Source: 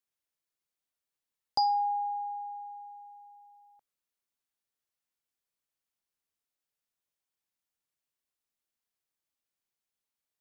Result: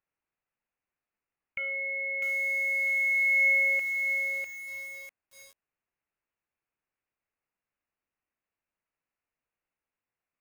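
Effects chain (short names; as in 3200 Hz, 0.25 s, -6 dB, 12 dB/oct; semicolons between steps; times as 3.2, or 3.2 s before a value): low shelf 110 Hz -10 dB; notches 50/100/150/200/250/300/350 Hz; limiter -28 dBFS, peak gain reduction 10.5 dB; sample leveller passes 5; negative-ratio compressor -38 dBFS, ratio -1; inverted band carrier 3000 Hz; lo-fi delay 0.649 s, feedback 35%, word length 9-bit, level -4.5 dB; gain +8.5 dB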